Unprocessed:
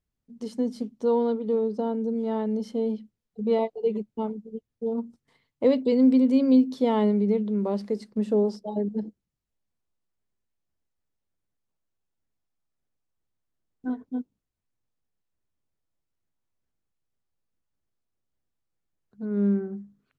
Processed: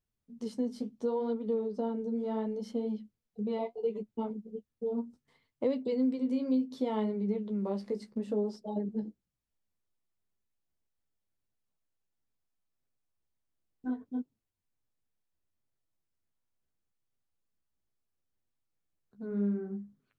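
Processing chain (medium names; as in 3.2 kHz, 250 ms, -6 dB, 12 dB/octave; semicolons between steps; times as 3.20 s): compression 2.5:1, threshold -27 dBFS, peak gain reduction 9 dB; flange 0.7 Hz, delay 7.3 ms, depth 9.8 ms, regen -32%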